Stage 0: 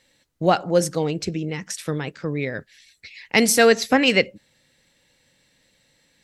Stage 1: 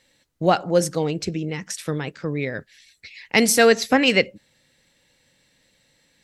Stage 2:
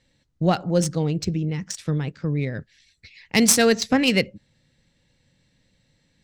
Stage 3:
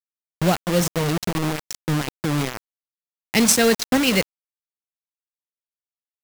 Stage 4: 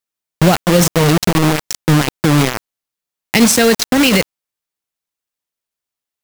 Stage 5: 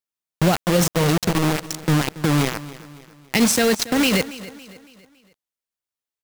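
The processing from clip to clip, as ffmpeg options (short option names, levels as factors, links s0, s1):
-af anull
-af "bass=f=250:g=12,treble=f=4000:g=14,adynamicsmooth=sensitivity=0.5:basefreq=3300,volume=0.562"
-af "acrusher=bits=3:mix=0:aa=0.000001"
-af "alimiter=level_in=3.76:limit=0.891:release=50:level=0:latency=1,volume=0.891"
-af "aecho=1:1:279|558|837|1116:0.141|0.0622|0.0273|0.012,volume=0.473"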